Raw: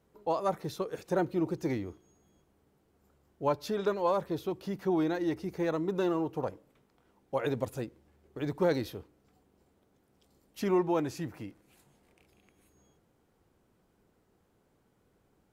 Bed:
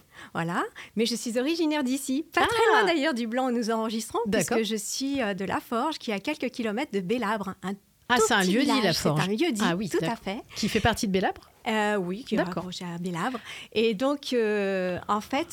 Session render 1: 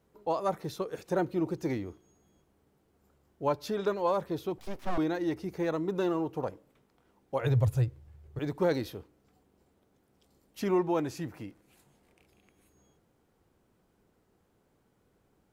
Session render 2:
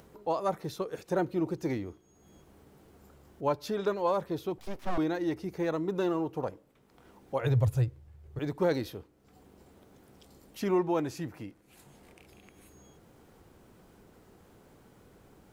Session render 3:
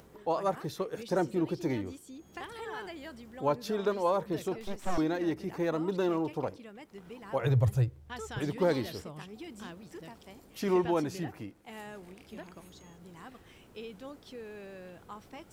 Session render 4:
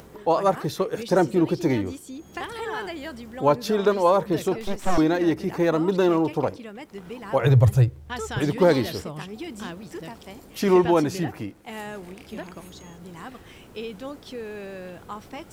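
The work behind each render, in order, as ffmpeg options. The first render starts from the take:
-filter_complex "[0:a]asettb=1/sr,asplit=3[s0][s1][s2];[s0]atrim=end=4.584[s3];[s1]atrim=start=4.58:end=4.98,asetpts=PTS-STARTPTS,afade=t=in:d=0.004:c=qsin,afade=t=out:st=0.396:d=0.004:c=qsin,aeval=exprs='abs(val(0))':c=same[s4];[s2]atrim=start=4.976[s5];[s3][s4]acrossfade=d=0.004:c1=hsin:c2=qsin[s6];[s6][s5]acrossfade=d=0.004:c1=qsin:c2=hsin,asettb=1/sr,asplit=3[s7][s8][s9];[s7]atrim=end=7.414[s10];[s8]atrim=start=7.41:end=8.39,asetpts=PTS-STARTPTS,afade=t=in:d=0.004:c=qsin,afade=t=out:st=0.976:d=0.004:c=qsin,lowshelf=f=160:t=q:w=3:g=11.5[s11];[s9]atrim=start=8.386[s12];[s10][s11]acrossfade=d=0.004:c1=hsin:c2=qsin[s13];[s13][s12]acrossfade=d=0.004:c1=qsin:c2=hsin"
-af "acompressor=mode=upward:threshold=0.00562:ratio=2.5"
-filter_complex "[1:a]volume=0.1[s0];[0:a][s0]amix=inputs=2:normalize=0"
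-af "volume=2.99"

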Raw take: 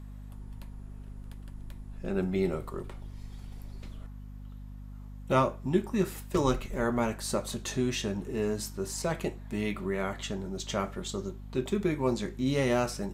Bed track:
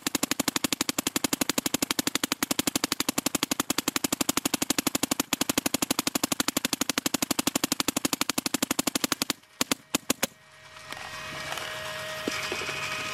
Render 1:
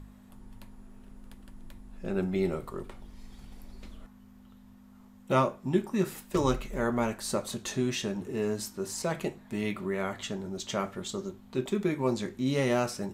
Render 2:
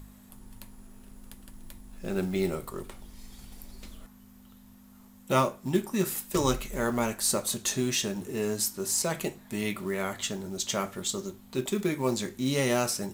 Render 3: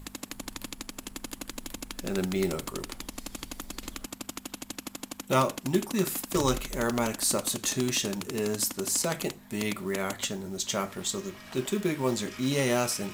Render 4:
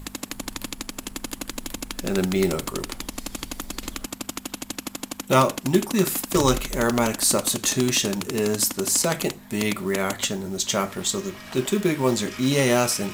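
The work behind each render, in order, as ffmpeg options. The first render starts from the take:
-af "bandreject=f=50:t=h:w=4,bandreject=f=100:t=h:w=4,bandreject=f=150:t=h:w=4"
-af "crystalizer=i=2.5:c=0,acrusher=bits=6:mode=log:mix=0:aa=0.000001"
-filter_complex "[1:a]volume=0.224[s0];[0:a][s0]amix=inputs=2:normalize=0"
-af "volume=2.11"

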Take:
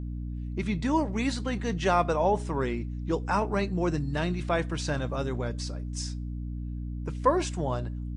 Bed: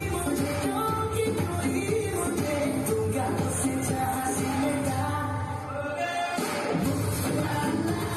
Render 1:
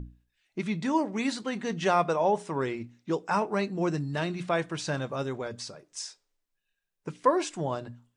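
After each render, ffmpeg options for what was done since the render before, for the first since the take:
-af "bandreject=f=60:t=h:w=6,bandreject=f=120:t=h:w=6,bandreject=f=180:t=h:w=6,bandreject=f=240:t=h:w=6,bandreject=f=300:t=h:w=6"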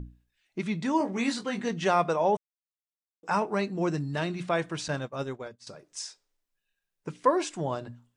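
-filter_complex "[0:a]asettb=1/sr,asplit=3[s0][s1][s2];[s0]atrim=end=0.984[s3];[s1]atrim=start=0.98:end=1.69,asetpts=PTS-STARTPTS,afade=t=in:d=0.004:c=qsin,afade=t=out:st=0.706:d=0.004:c=qsin,asplit=2[s4][s5];[s5]adelay=21,volume=0.596[s6];[s4][s6]amix=inputs=2:normalize=0,atrim=end_sample=31311[s7];[s2]atrim=start=1.686[s8];[s3][s7]acrossfade=d=0.004:c1=hsin:c2=qsin[s9];[s9][s8]acrossfade=d=0.004:c1=qsin:c2=hsin,asettb=1/sr,asplit=3[s10][s11][s12];[s10]atrim=end=4.884[s13];[s11]atrim=start=4.88:end=5.67,asetpts=PTS-STARTPTS,afade=t=in:d=0.004:c=qsin,afade=t=out:st=0.786:d=0.004:c=qsin,agate=range=0.0224:threshold=0.0316:ratio=3:release=100:detection=peak[s14];[s12]atrim=start=5.666[s15];[s13][s14]acrossfade=d=0.004:c1=hsin:c2=qsin[s16];[s16][s15]acrossfade=d=0.004:c1=qsin:c2=hsin,asplit=3[s17][s18][s19];[s17]atrim=end=2.37,asetpts=PTS-STARTPTS,afade=t=out:st=2.366:d=0.004:c=hsin[s20];[s18]atrim=start=2.37:end=3.23,asetpts=PTS-STARTPTS,volume=0[s21];[s19]atrim=start=3.23,asetpts=PTS-STARTPTS,afade=t=in:d=0.004:c=hsin[s22];[s20][s21][s22]concat=n=3:v=0:a=1"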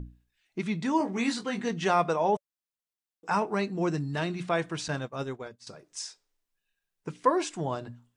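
-af "bandreject=f=570:w=12"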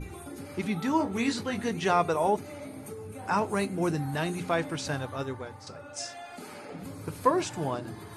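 -filter_complex "[1:a]volume=0.188[s0];[0:a][s0]amix=inputs=2:normalize=0"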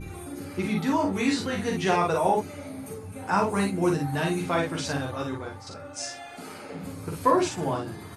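-af "aecho=1:1:11|42|56:0.631|0.562|0.631"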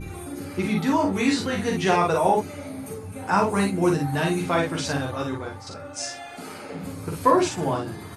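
-af "volume=1.41"

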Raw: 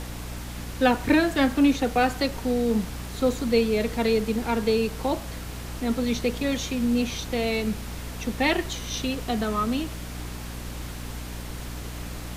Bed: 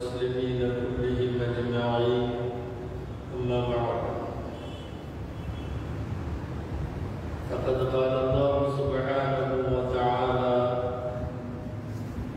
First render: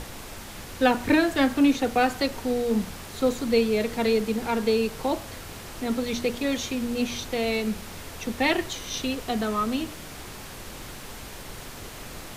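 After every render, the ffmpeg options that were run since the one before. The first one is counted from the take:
-af "bandreject=f=60:t=h:w=6,bandreject=f=120:t=h:w=6,bandreject=f=180:t=h:w=6,bandreject=f=240:t=h:w=6,bandreject=f=300:t=h:w=6"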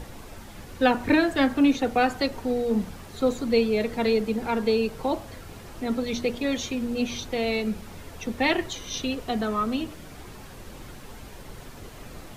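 -af "afftdn=nr=8:nf=-40"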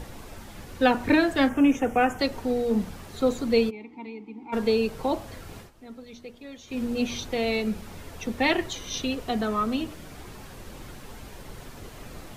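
-filter_complex "[0:a]asettb=1/sr,asplit=3[s0][s1][s2];[s0]atrim=end=1.494[s3];[s1]atrim=start=1.49:end=2.19,asetpts=PTS-STARTPTS,afade=t=in:d=0.004:c=qsin,afade=t=out:st=0.696:d=0.004:c=qsin,asuperstop=centerf=4200:order=4:qfactor=1.5[s4];[s2]atrim=start=2.186[s5];[s3][s4]acrossfade=d=0.004:c1=hsin:c2=qsin[s6];[s6][s5]acrossfade=d=0.004:c1=qsin:c2=hsin,asplit=3[s7][s8][s9];[s7]afade=t=out:st=3.69:d=0.02[s10];[s8]asplit=3[s11][s12][s13];[s11]bandpass=f=300:t=q:w=8,volume=1[s14];[s12]bandpass=f=870:t=q:w=8,volume=0.501[s15];[s13]bandpass=f=2240:t=q:w=8,volume=0.355[s16];[s14][s15][s16]amix=inputs=3:normalize=0,afade=t=in:st=3.69:d=0.02,afade=t=out:st=4.52:d=0.02[s17];[s9]afade=t=in:st=4.52:d=0.02[s18];[s10][s17][s18]amix=inputs=3:normalize=0,asplit=3[s19][s20][s21];[s19]atrim=end=5.71,asetpts=PTS-STARTPTS,afade=t=out:st=5.59:d=0.12:silence=0.158489[s22];[s20]atrim=start=5.71:end=6.67,asetpts=PTS-STARTPTS,volume=0.158[s23];[s21]atrim=start=6.67,asetpts=PTS-STARTPTS,afade=t=in:d=0.12:silence=0.158489[s24];[s22][s23][s24]concat=n=3:v=0:a=1"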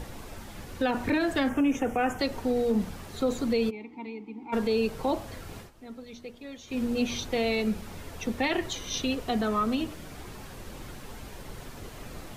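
-af "alimiter=limit=0.126:level=0:latency=1:release=53"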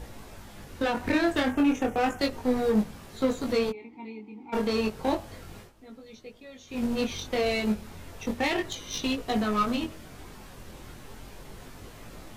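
-filter_complex "[0:a]asplit=2[s0][s1];[s1]acrusher=bits=3:mix=0:aa=0.5,volume=0.562[s2];[s0][s2]amix=inputs=2:normalize=0,flanger=delay=18.5:depth=5.4:speed=0.33"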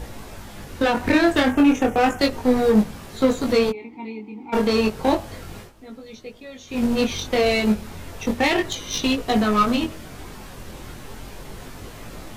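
-af "volume=2.37"

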